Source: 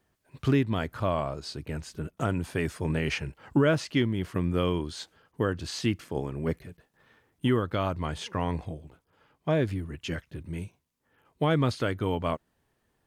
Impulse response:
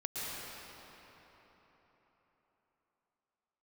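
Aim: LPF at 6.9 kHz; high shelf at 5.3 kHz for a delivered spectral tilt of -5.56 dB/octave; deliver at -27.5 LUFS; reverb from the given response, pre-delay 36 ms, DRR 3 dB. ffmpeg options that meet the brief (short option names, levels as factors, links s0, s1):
-filter_complex "[0:a]lowpass=6900,highshelf=f=5300:g=7,asplit=2[s0][s1];[1:a]atrim=start_sample=2205,adelay=36[s2];[s1][s2]afir=irnorm=-1:irlink=0,volume=0.447[s3];[s0][s3]amix=inputs=2:normalize=0,volume=1.06"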